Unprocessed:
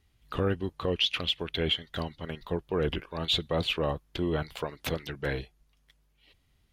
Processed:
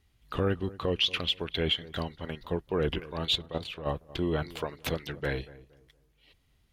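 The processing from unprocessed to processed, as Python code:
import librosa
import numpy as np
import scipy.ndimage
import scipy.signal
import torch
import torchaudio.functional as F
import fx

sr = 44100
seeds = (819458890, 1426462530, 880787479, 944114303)

y = fx.level_steps(x, sr, step_db=13, at=(3.34, 3.85), fade=0.02)
y = fx.echo_filtered(y, sr, ms=233, feedback_pct=32, hz=1200.0, wet_db=-18)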